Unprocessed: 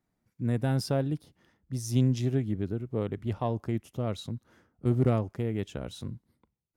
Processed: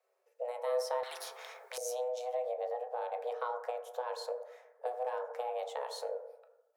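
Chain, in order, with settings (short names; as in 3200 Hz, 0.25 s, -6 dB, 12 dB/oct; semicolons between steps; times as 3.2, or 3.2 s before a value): notches 50/100/150 Hz; compressor 6:1, threshold -34 dBFS, peak gain reduction 14 dB; frequency shift +370 Hz; reverb RT60 1.0 s, pre-delay 5 ms, DRR 4 dB; 1.03–1.78 spectral compressor 4:1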